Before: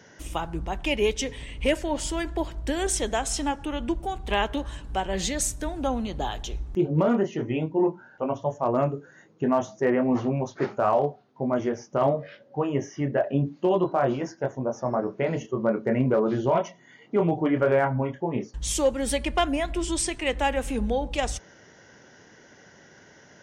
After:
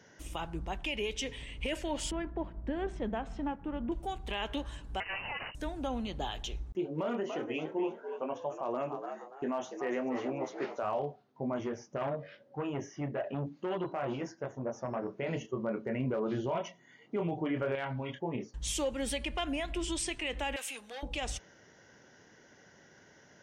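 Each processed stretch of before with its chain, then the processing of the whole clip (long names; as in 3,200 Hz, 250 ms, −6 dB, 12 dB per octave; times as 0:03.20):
0:02.11–0:03.92: mu-law and A-law mismatch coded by A + low-pass filter 1,500 Hz + parametric band 200 Hz +11.5 dB 0.51 octaves
0:05.00–0:05.55: lower of the sound and its delayed copy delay 0.95 ms + spectral tilt +3.5 dB per octave + voice inversion scrambler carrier 2,900 Hz
0:06.72–0:10.83: high-pass filter 270 Hz + noise gate with hold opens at −44 dBFS, closes at −52 dBFS + echo with shifted repeats 289 ms, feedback 34%, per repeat +74 Hz, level −10 dB
0:11.56–0:15.14: high-shelf EQ 11,000 Hz −3.5 dB + saturating transformer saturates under 520 Hz
0:17.75–0:18.19: downward compressor, threshold −26 dBFS + parametric band 3,600 Hz +15 dB 1.3 octaves
0:20.56–0:21.03: high-pass filter 1,100 Hz 6 dB per octave + spectral tilt +2.5 dB per octave + saturating transformer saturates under 2,500 Hz
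whole clip: dynamic equaliser 2,800 Hz, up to +7 dB, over −47 dBFS, Q 1.6; brickwall limiter −18 dBFS; level −7 dB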